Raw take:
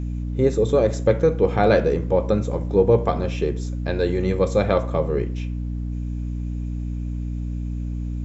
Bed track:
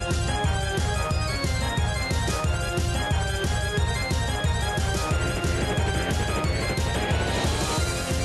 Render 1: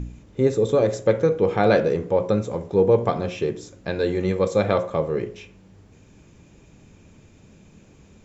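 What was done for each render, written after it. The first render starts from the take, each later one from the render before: de-hum 60 Hz, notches 12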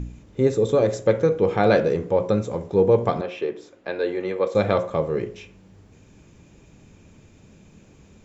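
3.21–4.55 three-band isolator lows -20 dB, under 280 Hz, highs -15 dB, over 3900 Hz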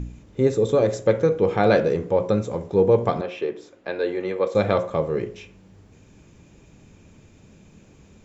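nothing audible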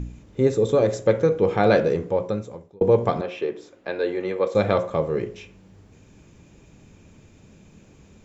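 1.94–2.81 fade out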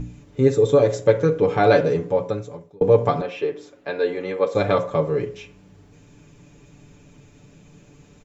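comb 6.9 ms, depth 69%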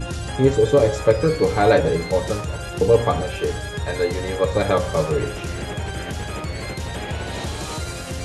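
add bed track -3.5 dB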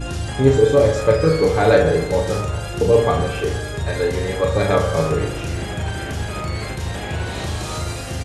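doubler 37 ms -4 dB; analogue delay 76 ms, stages 1024, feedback 59%, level -10 dB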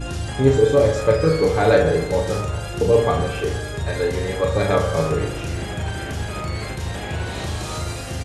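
gain -1.5 dB

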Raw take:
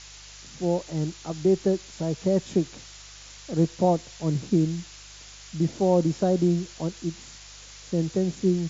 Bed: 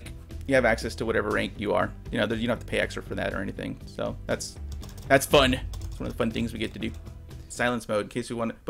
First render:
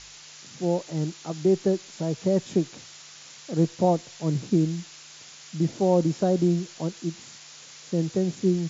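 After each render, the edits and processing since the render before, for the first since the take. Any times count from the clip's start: de-hum 50 Hz, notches 2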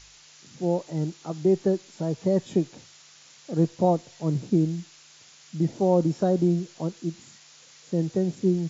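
noise print and reduce 6 dB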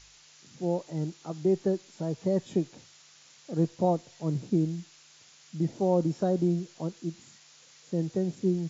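gain -4 dB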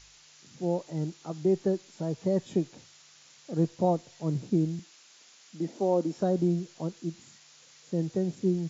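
4.79–6.17 HPF 210 Hz 24 dB/oct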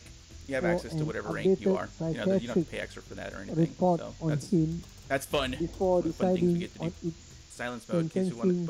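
add bed -10 dB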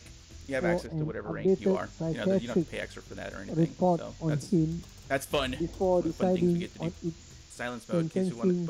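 0.86–1.48 tape spacing loss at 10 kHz 32 dB

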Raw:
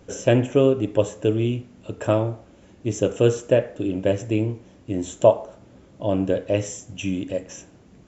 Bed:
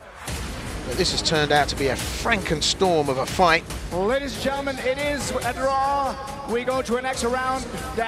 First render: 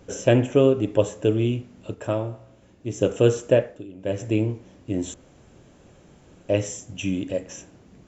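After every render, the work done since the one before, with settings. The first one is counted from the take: 1.94–3.01 resonator 60 Hz, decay 0.99 s, mix 50%; 3.59–4.25 dip -16 dB, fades 0.27 s; 5.14–6.49 room tone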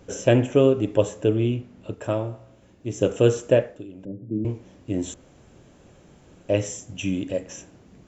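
1.24–1.94 LPF 3700 Hz 6 dB/oct; 4.05–4.45 Butterworth band-pass 200 Hz, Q 1.2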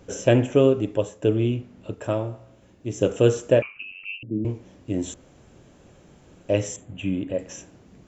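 0.73–1.22 fade out, to -10 dB; 3.62–4.23 inverted band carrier 2900 Hz; 6.76–7.39 running mean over 8 samples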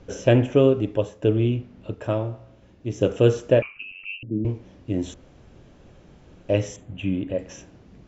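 LPF 5800 Hz 24 dB/oct; low shelf 62 Hz +10 dB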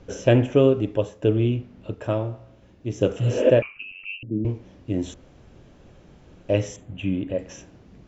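3.22–3.48 spectral repair 230–3900 Hz both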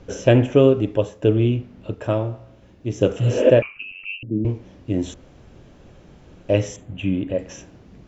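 gain +3 dB; limiter -2 dBFS, peak gain reduction 1 dB

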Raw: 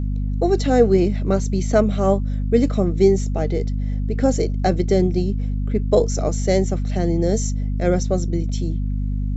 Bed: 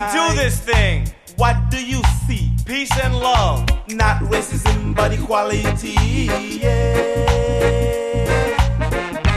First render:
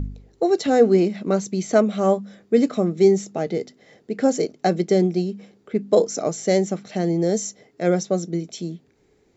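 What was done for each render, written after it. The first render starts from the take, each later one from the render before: de-hum 50 Hz, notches 5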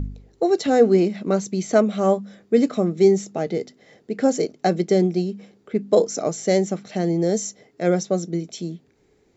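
nothing audible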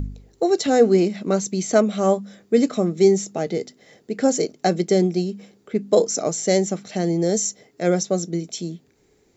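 high shelf 6000 Hz +11 dB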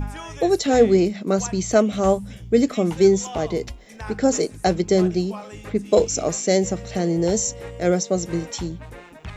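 add bed -20 dB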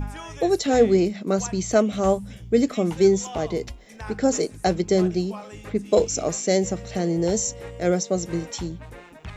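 gain -2 dB

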